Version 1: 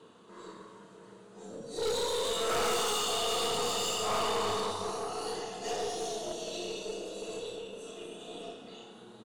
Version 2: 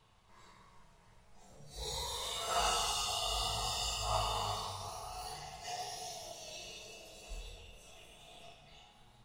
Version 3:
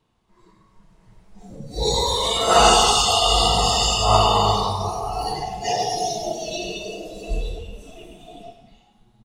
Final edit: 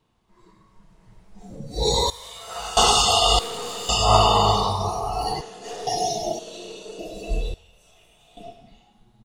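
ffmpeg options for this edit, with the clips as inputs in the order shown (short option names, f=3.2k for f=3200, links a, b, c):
-filter_complex "[1:a]asplit=2[a][b];[0:a]asplit=3[c][d][e];[2:a]asplit=6[f][g][h][i][j][k];[f]atrim=end=2.102[l];[a]atrim=start=2.098:end=2.772[m];[g]atrim=start=2.768:end=3.392[n];[c]atrim=start=3.388:end=3.892[o];[h]atrim=start=3.888:end=5.412[p];[d]atrim=start=5.408:end=5.872[q];[i]atrim=start=5.868:end=6.392[r];[e]atrim=start=6.388:end=6.992[s];[j]atrim=start=6.988:end=7.542[t];[b]atrim=start=7.538:end=8.372[u];[k]atrim=start=8.368[v];[l][m]acrossfade=d=0.004:c1=hsin:c2=hsin[w];[w][n]acrossfade=d=0.004:c1=hsin:c2=hsin[x];[x][o]acrossfade=d=0.004:c1=hsin:c2=hsin[y];[y][p]acrossfade=d=0.004:c1=hsin:c2=hsin[z];[z][q]acrossfade=d=0.004:c1=hsin:c2=hsin[aa];[aa][r]acrossfade=d=0.004:c1=hsin:c2=hsin[ab];[ab][s]acrossfade=d=0.004:c1=hsin:c2=hsin[ac];[ac][t]acrossfade=d=0.004:c1=hsin:c2=hsin[ad];[ad][u]acrossfade=d=0.004:c1=hsin:c2=hsin[ae];[ae][v]acrossfade=d=0.004:c1=hsin:c2=hsin"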